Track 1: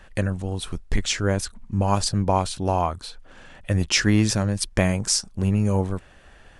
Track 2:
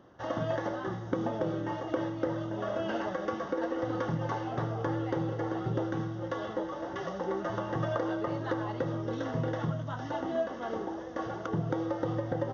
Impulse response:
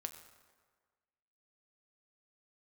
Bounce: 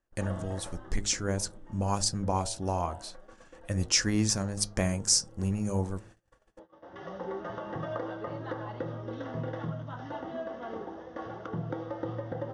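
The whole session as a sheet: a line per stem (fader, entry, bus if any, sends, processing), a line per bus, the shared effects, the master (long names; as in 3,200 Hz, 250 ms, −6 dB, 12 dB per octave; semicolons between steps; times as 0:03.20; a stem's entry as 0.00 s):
−3.0 dB, 0.00 s, no send, high shelf with overshoot 4,500 Hz +9 dB, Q 1.5; hum removal 51.28 Hz, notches 19
+1.5 dB, 0.00 s, no send, low-pass filter 5,700 Hz 12 dB per octave; hum removal 65.84 Hz, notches 27; automatic ducking −17 dB, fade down 1.35 s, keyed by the first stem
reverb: not used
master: noise gate −45 dBFS, range −28 dB; high-shelf EQ 6,500 Hz −8.5 dB; flanger 0.33 Hz, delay 3.2 ms, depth 1.3 ms, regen −86%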